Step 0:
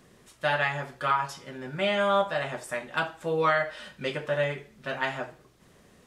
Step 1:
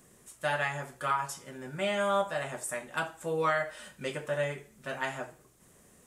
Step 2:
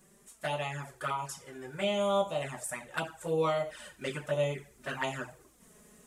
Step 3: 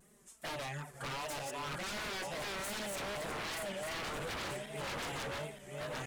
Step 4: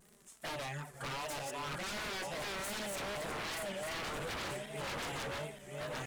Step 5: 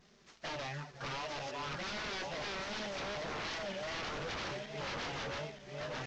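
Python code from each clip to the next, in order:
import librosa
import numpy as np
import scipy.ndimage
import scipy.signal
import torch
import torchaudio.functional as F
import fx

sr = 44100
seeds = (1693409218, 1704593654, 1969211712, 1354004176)

y1 = fx.high_shelf_res(x, sr, hz=6000.0, db=9.5, q=1.5)
y1 = y1 * 10.0 ** (-4.0 / 20.0)
y2 = fx.rider(y1, sr, range_db=3, speed_s=2.0)
y2 = fx.env_flanger(y2, sr, rest_ms=5.5, full_db=-27.5)
y2 = y2 * 10.0 ** (2.0 / 20.0)
y3 = fx.reverse_delay_fb(y2, sr, ms=466, feedback_pct=63, wet_db=-1.0)
y3 = 10.0 ** (-32.0 / 20.0) * (np.abs((y3 / 10.0 ** (-32.0 / 20.0) + 3.0) % 4.0 - 2.0) - 1.0)
y3 = fx.vibrato(y3, sr, rate_hz=2.6, depth_cents=95.0)
y3 = y3 * 10.0 ** (-3.0 / 20.0)
y4 = fx.dmg_crackle(y3, sr, seeds[0], per_s=95.0, level_db=-48.0)
y5 = fx.cvsd(y4, sr, bps=32000)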